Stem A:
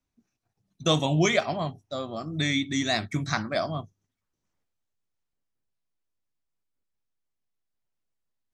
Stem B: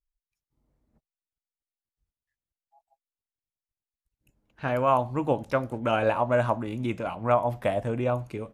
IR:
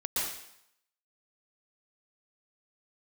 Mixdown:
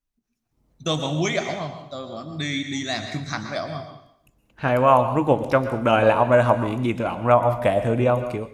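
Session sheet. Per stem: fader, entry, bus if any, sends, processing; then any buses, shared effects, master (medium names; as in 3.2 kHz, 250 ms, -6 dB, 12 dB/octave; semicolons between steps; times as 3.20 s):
-9.5 dB, 0.00 s, send -11 dB, none
0.0 dB, 0.00 s, send -16 dB, none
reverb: on, RT60 0.75 s, pre-delay 111 ms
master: level rider gain up to 6.5 dB; endings held to a fixed fall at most 330 dB/s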